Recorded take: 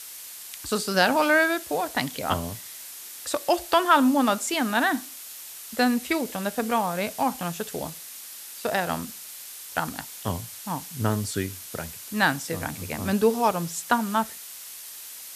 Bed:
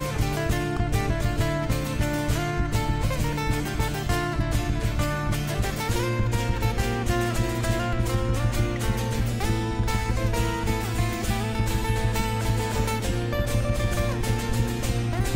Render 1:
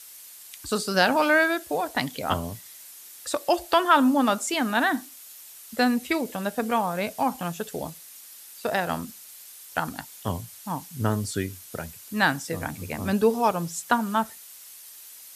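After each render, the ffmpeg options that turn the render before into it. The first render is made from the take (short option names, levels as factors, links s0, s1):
-af "afftdn=nr=7:nf=-41"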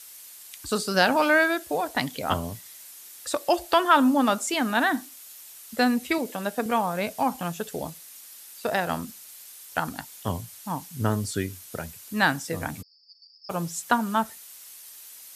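-filter_complex "[0:a]asettb=1/sr,asplit=3[s0][s1][s2];[s0]atrim=end=6.184[s3];[s1]atrim=start=6.18:end=6.66,asetpts=PTS-STARTPTS,afade=t=in:d=0.004:c=qsin,afade=t=out:st=0.476:d=0.004:c=qsin,highpass=180[s4];[s2]atrim=start=6.656[s5];[s3][s4]acrossfade=d=0.004:c1=hsin:c2=qsin[s6];[s6][s5]acrossfade=d=0.004:c1=qsin:c2=hsin,asplit=3[s7][s8][s9];[s7]afade=t=out:st=12.81:d=0.02[s10];[s8]asuperpass=centerf=4900:order=20:qfactor=5.3,afade=t=in:st=12.81:d=0.02,afade=t=out:st=13.49:d=0.02[s11];[s9]afade=t=in:st=13.49:d=0.02[s12];[s10][s11][s12]amix=inputs=3:normalize=0"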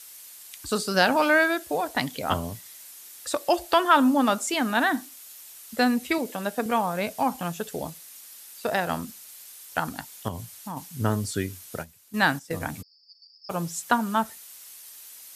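-filter_complex "[0:a]asettb=1/sr,asplit=3[s0][s1][s2];[s0]atrim=end=10.284[s3];[s1]atrim=start=10.28:end=10.77,asetpts=PTS-STARTPTS,afade=t=in:d=0.004:c=qsin,afade=t=out:st=0.486:d=0.004:c=qsin,acompressor=threshold=0.0282:ratio=3:attack=3.2:release=140:knee=1:detection=peak[s4];[s2]atrim=start=10.766[s5];[s3][s4]acrossfade=d=0.004:c1=hsin:c2=qsin[s6];[s6][s5]acrossfade=d=0.004:c1=qsin:c2=hsin,asplit=3[s7][s8][s9];[s7]afade=t=out:st=11.81:d=0.02[s10];[s8]agate=range=0.251:threshold=0.02:ratio=16:release=100:detection=peak,afade=t=in:st=11.81:d=0.02,afade=t=out:st=12.59:d=0.02[s11];[s9]afade=t=in:st=12.59:d=0.02[s12];[s10][s11][s12]amix=inputs=3:normalize=0"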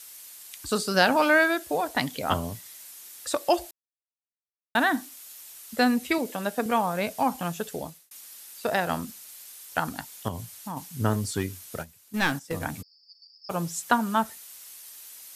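-filter_complex "[0:a]asettb=1/sr,asplit=3[s0][s1][s2];[s0]atrim=end=11.134[s3];[s1]atrim=start=11.13:end=12.66,asetpts=PTS-STARTPTS,afade=t=in:d=0.004:c=qsin,afade=t=out:st=1.526:d=0.004:c=qsin,aeval=exprs='clip(val(0),-1,0.0631)':c=same[s4];[s2]atrim=start=12.656[s5];[s3][s4]acrossfade=d=0.004:c1=hsin:c2=qsin[s6];[s6][s5]acrossfade=d=0.004:c1=qsin:c2=hsin,asplit=4[s7][s8][s9][s10];[s7]atrim=end=3.71,asetpts=PTS-STARTPTS,afade=t=out:st=3.706:d=0.004:c=hsin[s11];[s8]atrim=start=3.71:end=4.75,asetpts=PTS-STARTPTS,volume=0[s12];[s9]atrim=start=4.75:end=8.11,asetpts=PTS-STARTPTS,afade=t=in:d=0.004:c=hsin,afade=t=out:st=2.83:d=0.53:c=qsin[s13];[s10]atrim=start=8.11,asetpts=PTS-STARTPTS,afade=t=in:d=0.004:c=hsin[s14];[s11][s12][s13][s14]concat=n=4:v=0:a=1"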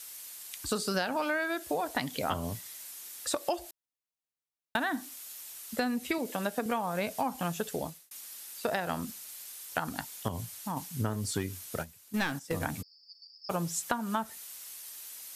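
-af "acompressor=threshold=0.0447:ratio=12"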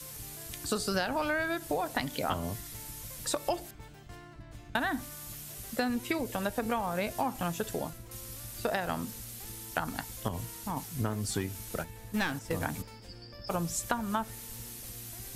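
-filter_complex "[1:a]volume=0.0668[s0];[0:a][s0]amix=inputs=2:normalize=0"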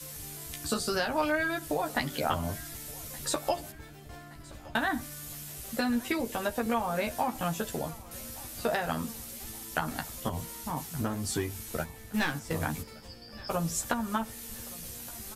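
-filter_complex "[0:a]asplit=2[s0][s1];[s1]adelay=13,volume=0.668[s2];[s0][s2]amix=inputs=2:normalize=0,aecho=1:1:1171|2342|3513|4684:0.0841|0.0438|0.0228|0.0118"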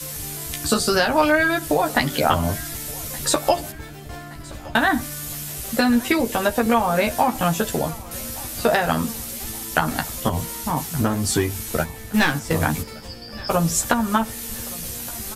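-af "volume=3.55,alimiter=limit=0.708:level=0:latency=1"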